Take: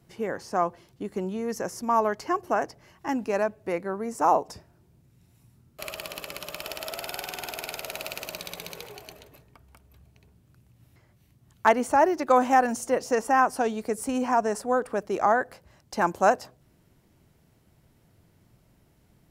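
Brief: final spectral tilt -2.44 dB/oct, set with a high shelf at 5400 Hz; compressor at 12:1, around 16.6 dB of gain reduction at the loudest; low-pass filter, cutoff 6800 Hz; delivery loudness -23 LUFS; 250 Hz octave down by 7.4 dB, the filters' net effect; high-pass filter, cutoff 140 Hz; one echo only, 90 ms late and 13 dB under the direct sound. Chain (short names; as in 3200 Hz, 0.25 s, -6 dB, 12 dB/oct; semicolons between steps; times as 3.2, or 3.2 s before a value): HPF 140 Hz; LPF 6800 Hz; bell 250 Hz -8.5 dB; high shelf 5400 Hz +3.5 dB; compressor 12:1, threshold -32 dBFS; echo 90 ms -13 dB; gain +15 dB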